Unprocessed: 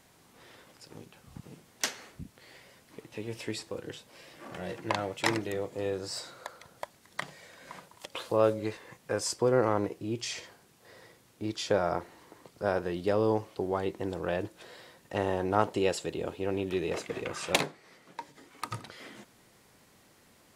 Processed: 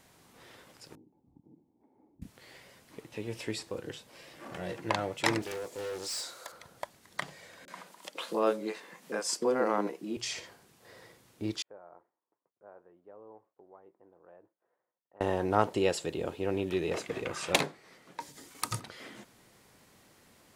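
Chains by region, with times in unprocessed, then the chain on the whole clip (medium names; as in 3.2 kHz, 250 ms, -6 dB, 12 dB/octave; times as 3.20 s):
0.95–2.22 s: compression 4:1, threshold -43 dBFS + cascade formant filter u
5.42–6.52 s: tone controls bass -14 dB, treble +11 dB + hard clipper -33.5 dBFS + loudspeaker Doppler distortion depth 0.29 ms
7.65–10.17 s: steep high-pass 170 Hz 48 dB/octave + upward compressor, threshold -47 dBFS + bands offset in time lows, highs 30 ms, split 430 Hz
11.62–15.21 s: Bessel low-pass 730 Hz, order 4 + expander -52 dBFS + differentiator
18.20–18.80 s: gate with hold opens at -46 dBFS, closes at -50 dBFS + tone controls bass +3 dB, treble +12 dB
whole clip: none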